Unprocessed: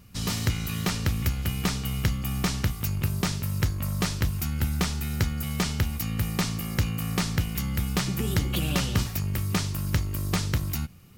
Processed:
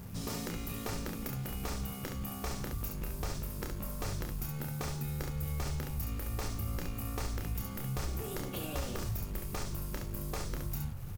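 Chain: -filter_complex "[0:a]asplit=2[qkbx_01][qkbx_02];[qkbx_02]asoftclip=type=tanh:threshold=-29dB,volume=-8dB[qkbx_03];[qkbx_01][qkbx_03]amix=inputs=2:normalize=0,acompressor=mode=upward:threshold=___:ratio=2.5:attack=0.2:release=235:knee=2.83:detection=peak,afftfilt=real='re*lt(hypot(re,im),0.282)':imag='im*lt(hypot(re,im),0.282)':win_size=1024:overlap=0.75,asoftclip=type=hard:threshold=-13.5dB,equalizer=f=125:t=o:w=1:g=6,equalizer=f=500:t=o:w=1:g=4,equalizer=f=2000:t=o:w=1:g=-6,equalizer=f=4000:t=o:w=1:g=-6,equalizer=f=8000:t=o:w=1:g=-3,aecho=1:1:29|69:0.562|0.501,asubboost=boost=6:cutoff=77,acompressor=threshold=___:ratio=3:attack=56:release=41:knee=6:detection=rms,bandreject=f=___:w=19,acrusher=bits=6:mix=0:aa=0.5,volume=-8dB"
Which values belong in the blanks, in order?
-28dB, -28dB, 3000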